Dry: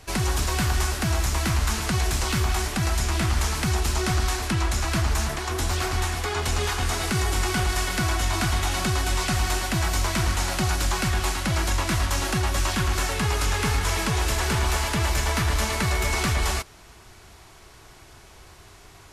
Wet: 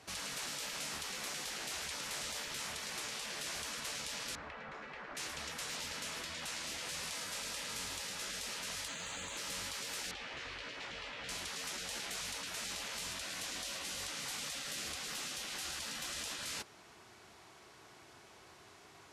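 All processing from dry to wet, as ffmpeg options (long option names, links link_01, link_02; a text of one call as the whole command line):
ffmpeg -i in.wav -filter_complex "[0:a]asettb=1/sr,asplit=3[link_01][link_02][link_03];[link_01]atrim=end=4.354[link_04];[link_02]atrim=start=4.35:end=5.17,asetpts=PTS-STARTPTS,afade=type=in:duration=0.004:curve=qsin,afade=type=out:start_time=0.816:duration=0.004:curve=qsin,lowpass=1400,equalizer=frequency=120:width=1.6:gain=8[link_05];[link_03]atrim=start=5.166[link_06];[link_04][link_05]acrossfade=duration=0.004:curve1=hsin:curve2=qsin[link_07];[link_07][link_06]acrossfade=duration=0.004:curve1=qsin:curve2=hsin,asettb=1/sr,asplit=3[link_08][link_09][link_10];[link_08]atrim=end=8.884[link_11];[link_09]atrim=start=8.88:end=9.37,asetpts=PTS-STARTPTS,afade=type=in:duration=0.004:curve=qsin,afade=type=out:start_time=0.486:duration=0.004:curve=qsin,lowpass=frequency=5400:width_type=q:width=12,acrusher=bits=9:dc=4:mix=0:aa=0.000001[link_12];[link_10]atrim=start=9.366[link_13];[link_11][link_12]acrossfade=duration=0.004:curve1=hsin:curve2=qsin[link_14];[link_14][link_13]acrossfade=duration=0.004:curve1=qsin:curve2=hsin,asettb=1/sr,asplit=3[link_15][link_16][link_17];[link_15]atrim=end=10.114[link_18];[link_16]atrim=start=10.11:end=11.29,asetpts=PTS-STARTPTS,afade=type=in:duration=0.004:curve=qsin,afade=type=out:start_time=1.176:duration=0.004:curve=qsin,lowpass=2500,asplit=2[link_19][link_20];[link_20]adelay=17,volume=-5dB[link_21];[link_19][link_21]amix=inputs=2:normalize=0,atrim=end_sample=52038[link_22];[link_17]atrim=start=11.286[link_23];[link_18][link_22]acrossfade=duration=0.004:curve1=hsin:curve2=qsin[link_24];[link_24][link_23]acrossfade=duration=0.004:curve1=qsin:curve2=hsin,highpass=170,afftfilt=real='re*lt(hypot(re,im),0.0562)':imag='im*lt(hypot(re,im),0.0562)':win_size=1024:overlap=0.75,highshelf=frequency=11000:gain=-11.5,volume=-7dB" out.wav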